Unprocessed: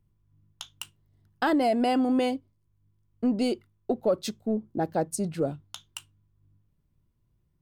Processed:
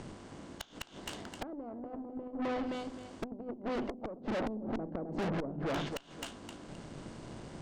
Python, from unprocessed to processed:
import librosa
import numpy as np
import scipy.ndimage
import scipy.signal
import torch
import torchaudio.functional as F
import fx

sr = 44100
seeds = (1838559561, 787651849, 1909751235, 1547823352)

p1 = fx.bin_compress(x, sr, power=0.6)
p2 = scipy.signal.sosfilt(scipy.signal.butter(8, 8500.0, 'lowpass', fs=sr, output='sos'), p1)
p3 = fx.hum_notches(p2, sr, base_hz=50, count=6)
p4 = p3 + fx.echo_feedback(p3, sr, ms=261, feedback_pct=26, wet_db=-10.0, dry=0)
p5 = fx.env_lowpass_down(p4, sr, base_hz=540.0, full_db=-23.5)
p6 = fx.gate_flip(p5, sr, shuts_db=-18.0, range_db=-27)
p7 = fx.tube_stage(p6, sr, drive_db=43.0, bias=0.55)
p8 = fx.env_flatten(p7, sr, amount_pct=50, at=(4.37, 5.89))
y = p8 * librosa.db_to_amplitude(10.5)